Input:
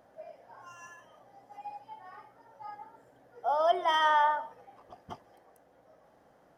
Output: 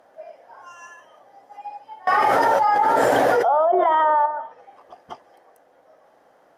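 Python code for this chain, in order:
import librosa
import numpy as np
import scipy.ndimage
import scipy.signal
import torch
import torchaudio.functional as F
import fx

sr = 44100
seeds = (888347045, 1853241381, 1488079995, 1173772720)

y = fx.env_lowpass_down(x, sr, base_hz=680.0, full_db=-22.0)
y = fx.bass_treble(y, sr, bass_db=-14, treble_db=-2)
y = fx.env_flatten(y, sr, amount_pct=100, at=(2.07, 4.26))
y = y * 10.0 ** (7.5 / 20.0)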